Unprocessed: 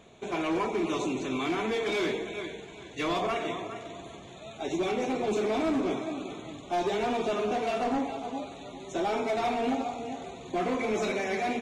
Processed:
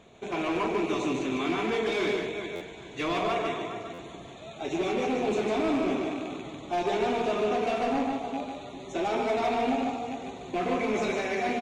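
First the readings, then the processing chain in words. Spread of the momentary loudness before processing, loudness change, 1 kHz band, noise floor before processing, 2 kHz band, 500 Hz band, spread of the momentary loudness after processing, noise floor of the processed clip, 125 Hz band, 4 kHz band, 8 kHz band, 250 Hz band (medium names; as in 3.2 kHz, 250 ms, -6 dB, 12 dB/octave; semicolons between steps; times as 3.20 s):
12 LU, +1.5 dB, +1.5 dB, -46 dBFS, +1.5 dB, +1.5 dB, 11 LU, -44 dBFS, +1.5 dB, +1.0 dB, -1.0 dB, +1.5 dB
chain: rattle on loud lows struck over -39 dBFS, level -32 dBFS; treble shelf 8.4 kHz -7 dB; delay 149 ms -4 dB; buffer glitch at 2.55/3.93 s, samples 512, times 4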